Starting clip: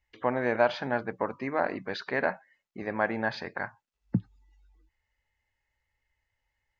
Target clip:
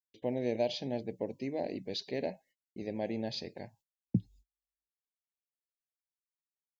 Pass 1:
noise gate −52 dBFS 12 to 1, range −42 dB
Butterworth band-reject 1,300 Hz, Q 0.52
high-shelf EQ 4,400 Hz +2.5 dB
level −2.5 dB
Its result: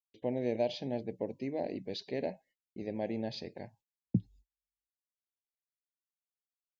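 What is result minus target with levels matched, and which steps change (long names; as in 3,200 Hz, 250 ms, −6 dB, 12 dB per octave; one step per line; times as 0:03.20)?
8,000 Hz band −5.5 dB
change: high-shelf EQ 4,400 Hz +11 dB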